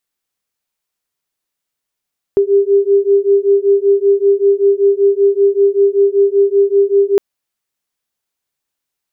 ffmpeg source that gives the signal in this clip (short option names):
-f lavfi -i "aevalsrc='0.266*(sin(2*PI*396*t)+sin(2*PI*401.2*t))':d=4.81:s=44100"